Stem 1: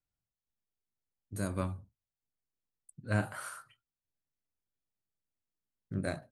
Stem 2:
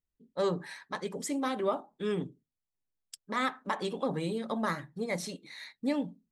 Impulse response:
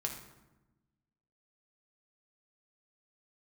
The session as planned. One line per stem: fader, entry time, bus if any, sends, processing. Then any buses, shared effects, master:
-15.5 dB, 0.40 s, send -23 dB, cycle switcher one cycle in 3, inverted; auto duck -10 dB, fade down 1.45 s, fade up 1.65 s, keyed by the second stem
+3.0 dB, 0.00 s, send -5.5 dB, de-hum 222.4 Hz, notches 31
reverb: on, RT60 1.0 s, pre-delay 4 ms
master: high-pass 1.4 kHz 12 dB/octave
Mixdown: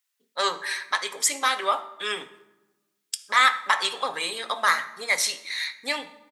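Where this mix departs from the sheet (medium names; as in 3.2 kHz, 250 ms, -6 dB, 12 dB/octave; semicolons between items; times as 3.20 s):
stem 1: entry 0.40 s -> 0.75 s; stem 2 +3.0 dB -> +13.5 dB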